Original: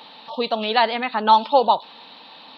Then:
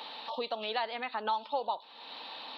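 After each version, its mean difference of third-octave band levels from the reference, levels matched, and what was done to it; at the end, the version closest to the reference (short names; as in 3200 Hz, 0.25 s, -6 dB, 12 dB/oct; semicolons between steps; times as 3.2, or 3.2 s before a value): 5.0 dB: HPF 330 Hz 12 dB/oct; compressor 2.5:1, threshold -38 dBFS, peak gain reduction 18.5 dB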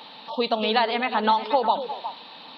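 3.5 dB: compressor, threshold -17 dBFS, peak gain reduction 8.5 dB; on a send: delay with a stepping band-pass 0.12 s, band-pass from 150 Hz, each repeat 1.4 oct, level -3 dB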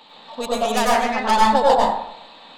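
7.5 dB: tracing distortion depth 0.17 ms; plate-style reverb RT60 0.72 s, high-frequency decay 0.4×, pre-delay 85 ms, DRR -5 dB; gain -5 dB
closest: second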